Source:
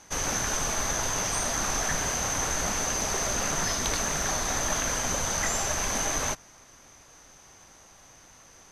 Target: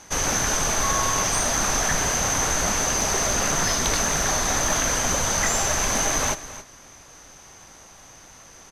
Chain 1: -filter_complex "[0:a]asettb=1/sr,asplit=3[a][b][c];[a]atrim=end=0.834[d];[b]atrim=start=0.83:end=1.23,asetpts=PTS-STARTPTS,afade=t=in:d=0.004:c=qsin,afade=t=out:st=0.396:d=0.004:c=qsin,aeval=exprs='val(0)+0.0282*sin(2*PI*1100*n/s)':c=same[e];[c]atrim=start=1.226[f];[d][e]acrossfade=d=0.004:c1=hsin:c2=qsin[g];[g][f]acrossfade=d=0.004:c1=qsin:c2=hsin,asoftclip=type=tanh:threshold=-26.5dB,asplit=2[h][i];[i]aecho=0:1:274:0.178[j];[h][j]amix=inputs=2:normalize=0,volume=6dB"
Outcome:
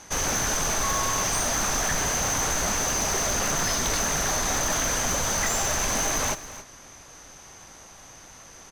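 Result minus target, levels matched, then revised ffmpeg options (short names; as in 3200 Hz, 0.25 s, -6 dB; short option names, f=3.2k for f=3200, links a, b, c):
soft clip: distortion +13 dB
-filter_complex "[0:a]asettb=1/sr,asplit=3[a][b][c];[a]atrim=end=0.834[d];[b]atrim=start=0.83:end=1.23,asetpts=PTS-STARTPTS,afade=t=in:d=0.004:c=qsin,afade=t=out:st=0.396:d=0.004:c=qsin,aeval=exprs='val(0)+0.0282*sin(2*PI*1100*n/s)':c=same[e];[c]atrim=start=1.226[f];[d][e]acrossfade=d=0.004:c1=hsin:c2=qsin[g];[g][f]acrossfade=d=0.004:c1=qsin:c2=hsin,asoftclip=type=tanh:threshold=-16.5dB,asplit=2[h][i];[i]aecho=0:1:274:0.178[j];[h][j]amix=inputs=2:normalize=0,volume=6dB"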